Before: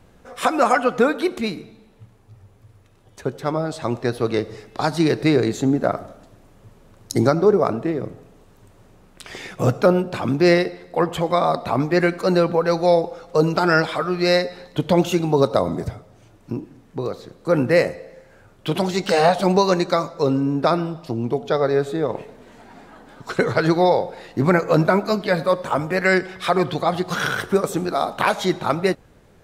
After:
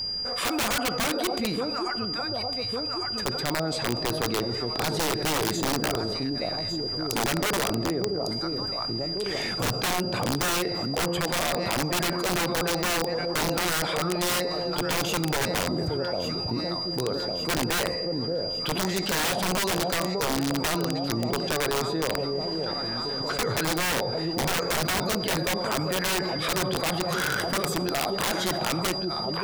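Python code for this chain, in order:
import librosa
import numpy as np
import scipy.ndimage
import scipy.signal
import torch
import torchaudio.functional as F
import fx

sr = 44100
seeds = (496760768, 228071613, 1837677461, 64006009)

p1 = x + fx.echo_alternate(x, sr, ms=577, hz=810.0, feedback_pct=67, wet_db=-10.5, dry=0)
p2 = p1 + 10.0 ** (-34.0 / 20.0) * np.sin(2.0 * np.pi * 4800.0 * np.arange(len(p1)) / sr)
p3 = (np.mod(10.0 ** (12.5 / 20.0) * p2 + 1.0, 2.0) - 1.0) / 10.0 ** (12.5 / 20.0)
p4 = fx.env_flatten(p3, sr, amount_pct=70)
y = p4 * 10.0 ** (-9.0 / 20.0)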